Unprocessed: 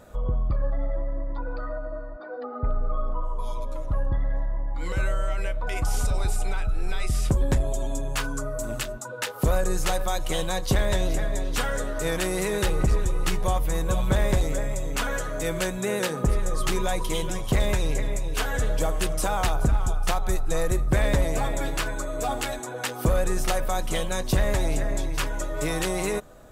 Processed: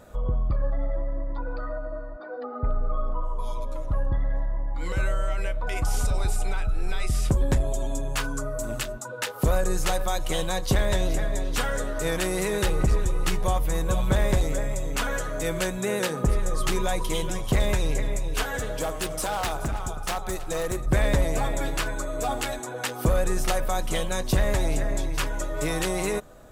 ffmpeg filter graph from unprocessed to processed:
-filter_complex "[0:a]asettb=1/sr,asplit=3[s0][s1][s2];[s0]atrim=end=18.434[s3];[s1]atrim=start=18.43:end=20.86,asetpts=PTS-STARTPTS,afade=t=in:d=0.004:c=qsin,afade=t=out:st=2.426:d=0.004:c=qsin,lowshelf=f=94:g=-11,aecho=1:1:323:0.112,atrim=end_sample=107163,aeval=exprs='0.0891*(abs(mod(val(0)/0.0891+3,4)-2)-1)':c=same[s4];[s2]atrim=start=20.856[s5];[s3][s4]acrossfade=d=0.004:c1=hsin:c2=qsin[s6];[s6][s5]acrossfade=d=0.004:c1=qsin:c2=hsin"

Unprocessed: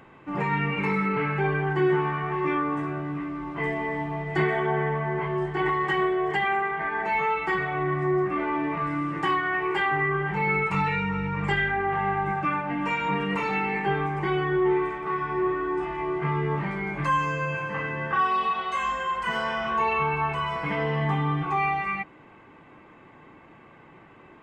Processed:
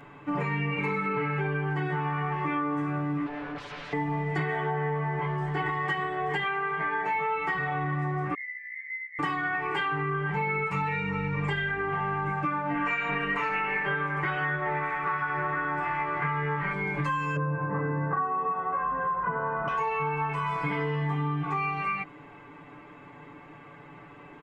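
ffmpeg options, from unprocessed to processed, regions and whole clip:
-filter_complex "[0:a]asettb=1/sr,asplit=3[s0][s1][s2];[s0]atrim=end=3.264[s3];[s1]atrim=start=3.26:end=3.93,asetpts=PTS-STARTPTS,afade=t=in:d=0.004:c=qsin,afade=t=out:st=0.666:d=0.004:c=qsin,aeval=exprs='0.0178*(abs(mod(val(0)/0.0178+3,4)-2)-1)':c=same,lowpass=2300[s4];[s2]atrim=start=3.926[s5];[s3][s4]acrossfade=d=0.004:c1=hsin:c2=qsin[s6];[s6][s5]acrossfade=d=0.004:c1=qsin:c2=hsin,asettb=1/sr,asplit=3[s7][s8][s9];[s7]atrim=end=8.344[s10];[s8]atrim=start=8.34:end=9.19,asetpts=PTS-STARTPTS,afade=t=in:d=0.004:c=qsin,afade=t=out:st=0.846:d=0.004:c=qsin,asuperpass=centerf=2000:order=8:qfactor=5.6,aecho=1:1:2.4:0.61,atrim=end_sample=37485[s11];[s9]atrim=start=9.186[s12];[s10][s11]acrossfade=d=0.004:c1=hsin:c2=qsin[s13];[s13][s12]acrossfade=d=0.004:c1=qsin:c2=hsin,asettb=1/sr,asplit=3[s14][s15][s16];[s14]atrim=end=12.744[s17];[s15]atrim=start=12.74:end=16.73,asetpts=PTS-STARTPTS,afade=t=in:d=0.004:c=qsin,afade=t=out:st=3.986:d=0.004:c=qsin,equalizer=f=1600:w=0.98:g=12,tremolo=f=220:d=0.571[s18];[s16]atrim=start=16.726[s19];[s17][s18]acrossfade=d=0.004:c1=hsin:c2=qsin[s20];[s20][s19]acrossfade=d=0.004:c1=qsin:c2=hsin,asettb=1/sr,asplit=3[s21][s22][s23];[s21]atrim=end=17.364[s24];[s22]atrim=start=17.36:end=19.68,asetpts=PTS-STARTPTS,afade=t=in:d=0.004:c=qsin,afade=t=out:st=2.316:d=0.004:c=qsin,lowpass=f=1500:w=0.5412,lowpass=f=1500:w=1.3066,equalizer=f=250:w=0.37:g=7[s25];[s23]atrim=start=19.676[s26];[s24][s25]acrossfade=d=0.004:c1=hsin:c2=qsin[s27];[s27][s26]acrossfade=d=0.004:c1=qsin:c2=hsin,aecho=1:1:6.9:0.86,acompressor=threshold=0.0501:ratio=6"

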